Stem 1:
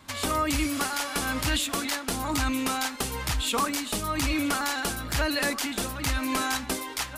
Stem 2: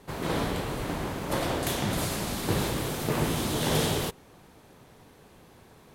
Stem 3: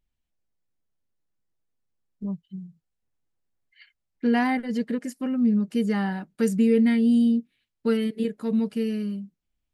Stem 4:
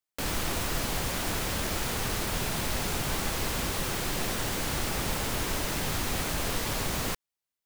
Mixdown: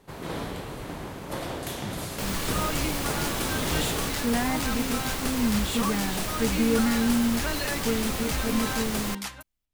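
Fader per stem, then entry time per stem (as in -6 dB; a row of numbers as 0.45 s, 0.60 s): -5.0 dB, -4.5 dB, -4.5 dB, -1.0 dB; 2.25 s, 0.00 s, 0.00 s, 2.00 s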